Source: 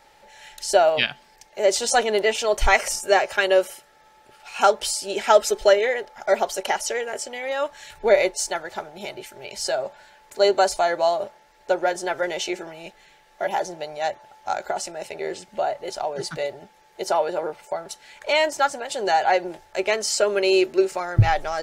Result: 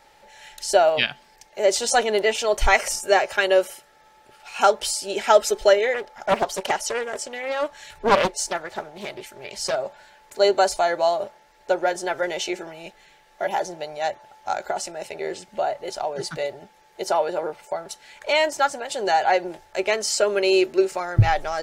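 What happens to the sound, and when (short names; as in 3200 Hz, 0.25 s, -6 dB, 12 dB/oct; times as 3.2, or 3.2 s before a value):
5.94–9.76 Doppler distortion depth 0.63 ms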